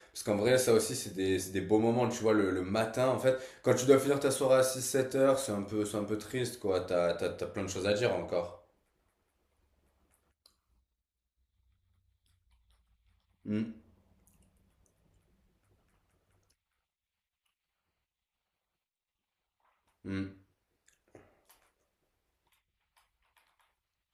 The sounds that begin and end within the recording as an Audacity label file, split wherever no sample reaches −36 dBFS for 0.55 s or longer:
13.460000	13.700000	sound
20.070000	20.270000	sound